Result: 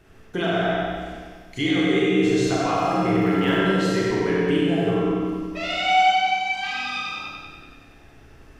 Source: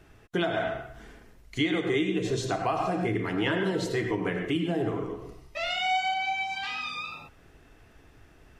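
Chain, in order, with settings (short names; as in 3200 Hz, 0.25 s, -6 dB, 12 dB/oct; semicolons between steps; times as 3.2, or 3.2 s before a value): 2.76–3.51 crackle 28/s -> 120/s -37 dBFS; on a send: analogue delay 95 ms, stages 4096, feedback 67%, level -4.5 dB; on the sum: Schroeder reverb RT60 0.96 s, combs from 28 ms, DRR -2.5 dB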